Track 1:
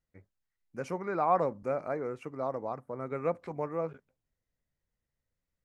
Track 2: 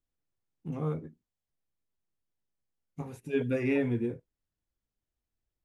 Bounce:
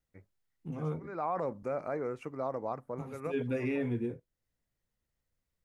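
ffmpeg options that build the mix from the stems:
-filter_complex "[0:a]volume=0dB[a];[1:a]volume=-3dB,asplit=2[b][c];[c]apad=whole_len=248824[d];[a][d]sidechaincompress=threshold=-52dB:ratio=6:attack=49:release=269[e];[e][b]amix=inputs=2:normalize=0,alimiter=limit=-24dB:level=0:latency=1:release=28"

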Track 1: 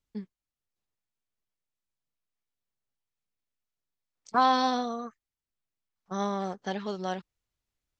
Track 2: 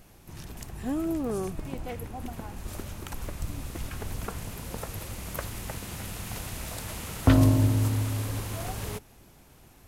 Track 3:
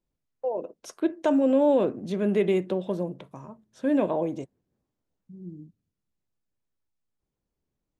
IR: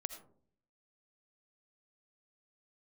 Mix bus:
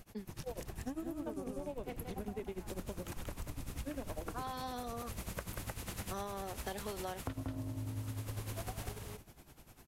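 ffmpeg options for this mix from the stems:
-filter_complex "[0:a]highpass=f=230:w=0.5412,highpass=f=230:w=1.3066,volume=-1.5dB[a];[1:a]volume=-0.5dB,asplit=2[b][c];[c]volume=-11.5dB[d];[2:a]volume=-9dB,asplit=2[e][f];[f]apad=whole_len=352386[g];[a][g]sidechaincompress=threshold=-48dB:ratio=8:attack=16:release=571[h];[b][e]amix=inputs=2:normalize=0,tremolo=f=10:d=0.96,acompressor=threshold=-34dB:ratio=2,volume=0dB[i];[d]aecho=0:1:186:1[j];[h][i][j]amix=inputs=3:normalize=0,acompressor=threshold=-37dB:ratio=10"

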